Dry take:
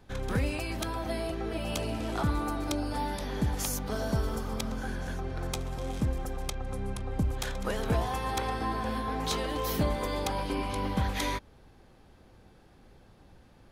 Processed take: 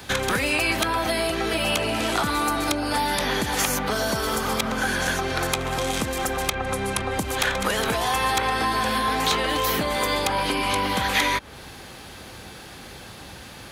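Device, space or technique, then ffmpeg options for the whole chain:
mastering chain: -filter_complex "[0:a]highpass=59,equalizer=f=5.3k:t=o:w=0.23:g=-2.5,acrossover=split=220|2700[a][b][c];[a]acompressor=threshold=-44dB:ratio=4[d];[b]acompressor=threshold=-36dB:ratio=4[e];[c]acompressor=threshold=-55dB:ratio=4[f];[d][e][f]amix=inputs=3:normalize=0,acompressor=threshold=-40dB:ratio=2,asoftclip=type=tanh:threshold=-27.5dB,tiltshelf=f=1.3k:g=-7.5,asoftclip=type=hard:threshold=-27.5dB,alimiter=level_in=28.5dB:limit=-1dB:release=50:level=0:latency=1,volume=-7.5dB"

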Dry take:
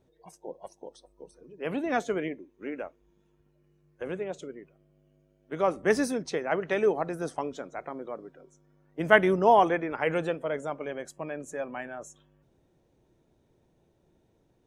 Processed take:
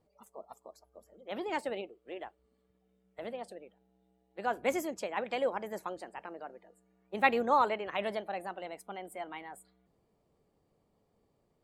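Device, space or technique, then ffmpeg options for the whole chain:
nightcore: -af "asetrate=55566,aresample=44100,volume=-6.5dB"

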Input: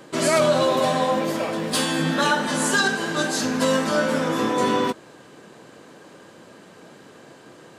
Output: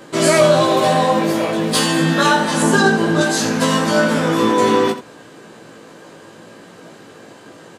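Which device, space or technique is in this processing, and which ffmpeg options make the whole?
slapback doubling: -filter_complex "[0:a]asettb=1/sr,asplit=3[a][b][c];[a]atrim=end=2.624[d];[b]atrim=start=2.62:end=3.21,asetpts=PTS-STARTPTS,afade=t=in:d=0.004:c=qsin,afade=t=out:st=0.586:d=0.004:c=qsin,tiltshelf=f=1.1k:g=5.5[e];[c]atrim=start=3.206[f];[d][e]acrossfade=d=0.004:c1=hsin:c2=qsin[g];[g][f]acrossfade=d=0.004:c1=qsin:c2=hsin,asplit=3[h][i][j];[i]adelay=18,volume=-3.5dB[k];[j]adelay=85,volume=-11.5dB[l];[h][k][l]amix=inputs=3:normalize=0,volume=4dB"

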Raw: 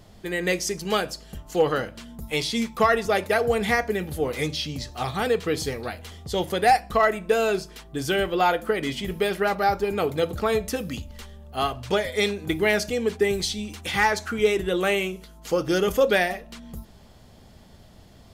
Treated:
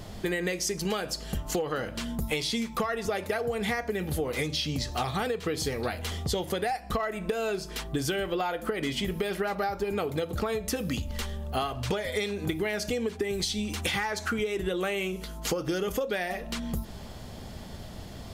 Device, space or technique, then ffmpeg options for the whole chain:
serial compression, leveller first: -af "acompressor=threshold=-24dB:ratio=2.5,acompressor=threshold=-35dB:ratio=10,volume=8.5dB"

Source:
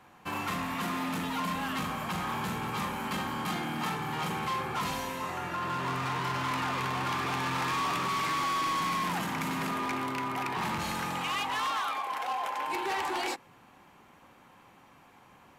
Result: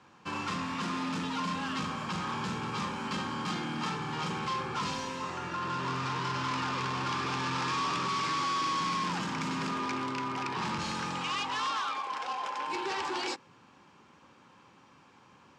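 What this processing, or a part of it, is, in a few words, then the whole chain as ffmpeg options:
car door speaker: -af "highpass=81,equalizer=f=700:t=q:w=4:g=-9,equalizer=f=2k:t=q:w=4:g=-5,equalizer=f=5.1k:t=q:w=4:g=5,lowpass=f=7.5k:w=0.5412,lowpass=f=7.5k:w=1.3066"

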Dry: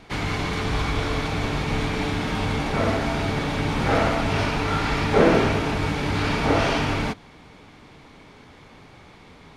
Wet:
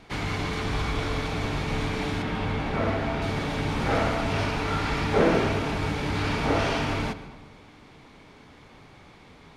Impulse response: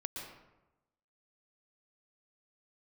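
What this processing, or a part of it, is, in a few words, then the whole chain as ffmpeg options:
saturated reverb return: -filter_complex "[0:a]asettb=1/sr,asplit=3[a][b][c];[a]atrim=end=2.224[d];[b]atrim=start=2.22:end=3.22,asetpts=PTS-STARTPTS,afade=t=in:d=0.004:c=qsin,afade=t=out:st=0.996:d=0.004:c=qsin,acrossover=split=3800[e][f];[f]acompressor=threshold=-51dB:ratio=4:attack=1:release=60[g];[e][g]amix=inputs=2:normalize=0[h];[c]atrim=start=3.216[i];[d][h]acrossfade=d=0.004:c1=hsin:c2=qsin[j];[j][i]acrossfade=d=0.004:c1=qsin:c2=hsin,asplit=2[k][l];[1:a]atrim=start_sample=2205[m];[l][m]afir=irnorm=-1:irlink=0,asoftclip=type=tanh:threshold=-19.5dB,volume=-7dB[n];[k][n]amix=inputs=2:normalize=0,volume=-5.5dB"

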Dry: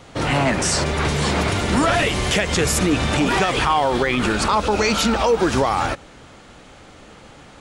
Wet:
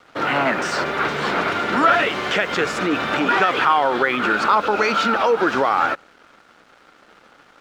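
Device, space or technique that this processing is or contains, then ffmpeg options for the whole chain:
pocket radio on a weak battery: -af "highpass=270,lowpass=3.5k,aeval=exprs='sgn(val(0))*max(abs(val(0))-0.00422,0)':c=same,equalizer=f=1.4k:t=o:w=0.44:g=9"

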